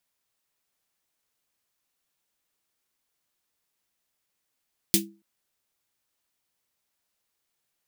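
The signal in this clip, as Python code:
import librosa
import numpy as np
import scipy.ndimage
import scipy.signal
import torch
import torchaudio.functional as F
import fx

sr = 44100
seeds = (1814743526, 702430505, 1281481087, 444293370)

y = fx.drum_snare(sr, seeds[0], length_s=0.28, hz=200.0, second_hz=330.0, noise_db=7.5, noise_from_hz=2500.0, decay_s=0.34, noise_decay_s=0.14)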